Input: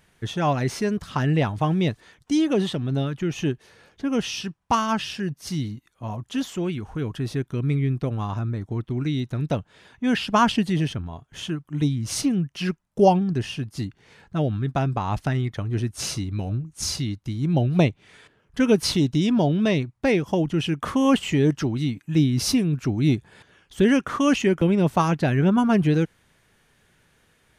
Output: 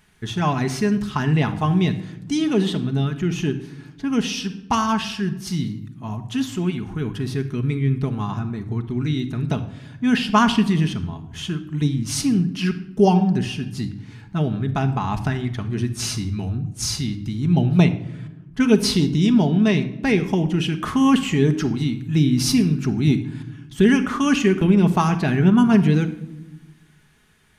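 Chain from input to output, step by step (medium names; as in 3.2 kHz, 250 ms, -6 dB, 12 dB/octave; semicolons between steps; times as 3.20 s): peaking EQ 550 Hz -11 dB 0.42 oct; reverberation RT60 0.95 s, pre-delay 5 ms, DRR 6.5 dB; 17.86–19.92 s: tape noise reduction on one side only decoder only; trim +2 dB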